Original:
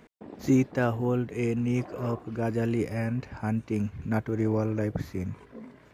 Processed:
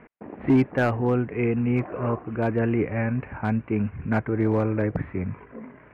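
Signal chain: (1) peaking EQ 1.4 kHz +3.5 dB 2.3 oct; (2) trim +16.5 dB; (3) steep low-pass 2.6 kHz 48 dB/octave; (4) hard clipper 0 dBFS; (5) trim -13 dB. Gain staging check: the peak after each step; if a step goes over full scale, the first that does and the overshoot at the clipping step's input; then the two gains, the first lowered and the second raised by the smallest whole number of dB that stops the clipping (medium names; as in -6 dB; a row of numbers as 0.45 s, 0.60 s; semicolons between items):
-10.5 dBFS, +6.0 dBFS, +6.5 dBFS, 0.0 dBFS, -13.0 dBFS; step 2, 6.5 dB; step 2 +9.5 dB, step 5 -6 dB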